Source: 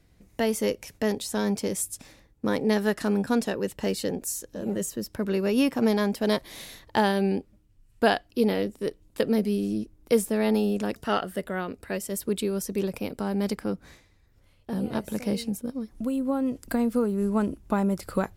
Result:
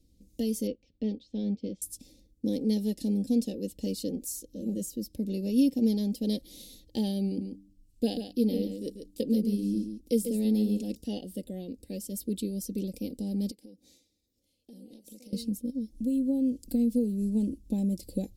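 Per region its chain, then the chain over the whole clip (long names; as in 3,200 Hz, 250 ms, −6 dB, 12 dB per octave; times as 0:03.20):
0:00.67–0:01.82: low-pass filter 3,600 Hz 24 dB per octave + expander for the loud parts, over −43 dBFS
0:07.27–0:10.95: hum removal 98.1 Hz, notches 3 + single-tap delay 140 ms −8 dB
0:13.51–0:15.33: high-pass filter 510 Hz 6 dB per octave + downward compressor 12 to 1, threshold −41 dBFS
whole clip: Chebyshev band-stop filter 360–4,500 Hz, order 2; dynamic equaliser 7,100 Hz, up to −4 dB, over −51 dBFS, Q 1.3; comb filter 3.8 ms, depth 57%; level −3.5 dB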